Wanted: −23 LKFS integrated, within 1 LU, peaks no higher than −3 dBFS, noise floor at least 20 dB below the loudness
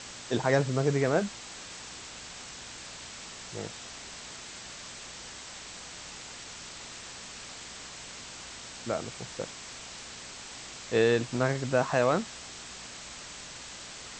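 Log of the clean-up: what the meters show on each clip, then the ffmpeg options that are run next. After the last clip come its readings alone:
mains hum 60 Hz; hum harmonics up to 240 Hz; level of the hum −57 dBFS; background noise floor −45 dBFS; target noise floor −54 dBFS; integrated loudness −33.5 LKFS; sample peak −11.0 dBFS; target loudness −23.0 LKFS
→ -af "bandreject=frequency=60:width_type=h:width=4,bandreject=frequency=120:width_type=h:width=4,bandreject=frequency=180:width_type=h:width=4,bandreject=frequency=240:width_type=h:width=4"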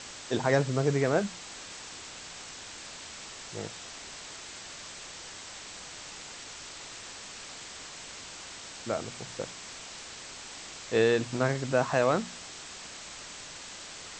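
mains hum none found; background noise floor −45 dBFS; target noise floor −54 dBFS
→ -af "afftdn=noise_reduction=9:noise_floor=-45"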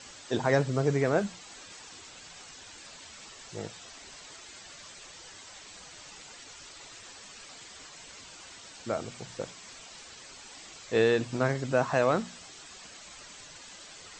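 background noise floor −49 dBFS; target noise floor −50 dBFS
→ -af "afftdn=noise_reduction=6:noise_floor=-49"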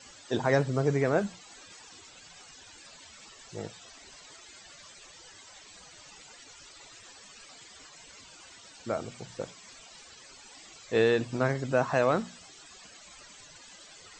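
background noise floor −52 dBFS; integrated loudness −29.0 LKFS; sample peak −11.0 dBFS; target loudness −23.0 LKFS
→ -af "volume=6dB"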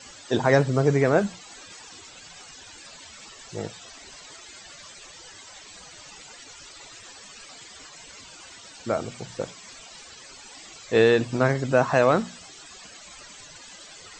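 integrated loudness −23.0 LKFS; sample peak −5.0 dBFS; background noise floor −46 dBFS

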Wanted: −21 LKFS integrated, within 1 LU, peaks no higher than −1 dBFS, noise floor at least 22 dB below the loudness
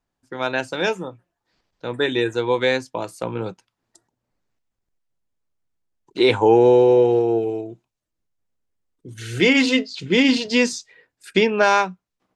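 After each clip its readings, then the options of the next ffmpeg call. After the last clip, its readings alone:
integrated loudness −19.0 LKFS; sample peak −3.5 dBFS; target loudness −21.0 LKFS
→ -af "volume=-2dB"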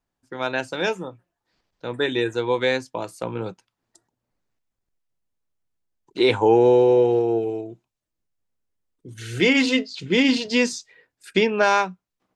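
integrated loudness −21.0 LKFS; sample peak −5.5 dBFS; background noise floor −83 dBFS

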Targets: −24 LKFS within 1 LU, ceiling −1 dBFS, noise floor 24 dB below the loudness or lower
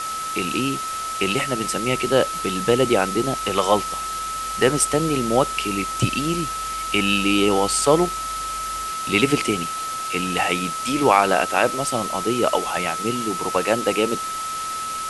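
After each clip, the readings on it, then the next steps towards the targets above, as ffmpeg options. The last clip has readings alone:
interfering tone 1,300 Hz; level of the tone −26 dBFS; background noise floor −28 dBFS; target noise floor −46 dBFS; integrated loudness −21.5 LKFS; sample peak −1.5 dBFS; target loudness −24.0 LKFS
→ -af "bandreject=frequency=1300:width=30"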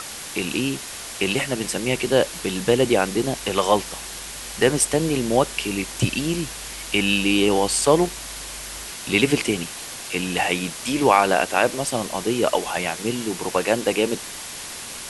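interfering tone none found; background noise floor −35 dBFS; target noise floor −46 dBFS
→ -af "afftdn=noise_reduction=11:noise_floor=-35"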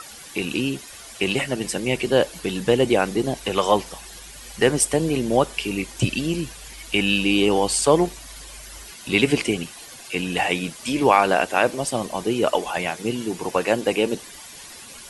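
background noise floor −41 dBFS; target noise floor −46 dBFS
→ -af "afftdn=noise_reduction=6:noise_floor=-41"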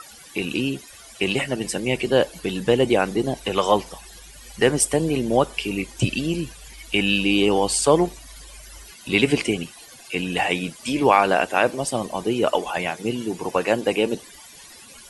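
background noise floor −45 dBFS; target noise floor −46 dBFS
→ -af "afftdn=noise_reduction=6:noise_floor=-45"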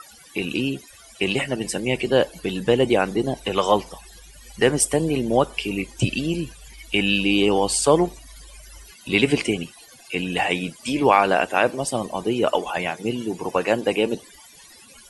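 background noise floor −48 dBFS; integrated loudness −22.0 LKFS; sample peak −2.0 dBFS; target loudness −24.0 LKFS
→ -af "volume=-2dB"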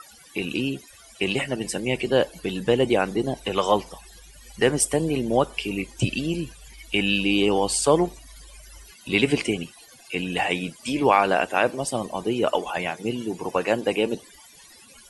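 integrated loudness −24.0 LKFS; sample peak −4.0 dBFS; background noise floor −50 dBFS

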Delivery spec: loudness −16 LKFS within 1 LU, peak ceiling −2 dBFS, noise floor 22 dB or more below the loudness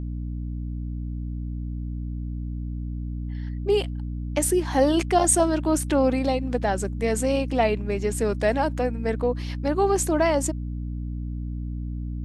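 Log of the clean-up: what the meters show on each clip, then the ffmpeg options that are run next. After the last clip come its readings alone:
mains hum 60 Hz; hum harmonics up to 300 Hz; level of the hum −28 dBFS; integrated loudness −25.5 LKFS; sample peak −8.0 dBFS; target loudness −16.0 LKFS
→ -af "bandreject=frequency=60:width_type=h:width=6,bandreject=frequency=120:width_type=h:width=6,bandreject=frequency=180:width_type=h:width=6,bandreject=frequency=240:width_type=h:width=6,bandreject=frequency=300:width_type=h:width=6"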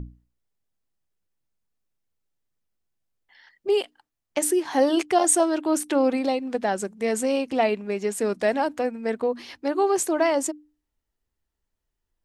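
mains hum none found; integrated loudness −24.0 LKFS; sample peak −8.0 dBFS; target loudness −16.0 LKFS
→ -af "volume=8dB,alimiter=limit=-2dB:level=0:latency=1"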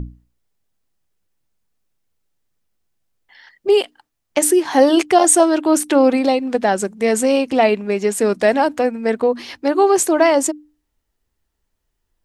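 integrated loudness −16.0 LKFS; sample peak −2.0 dBFS; background noise floor −75 dBFS

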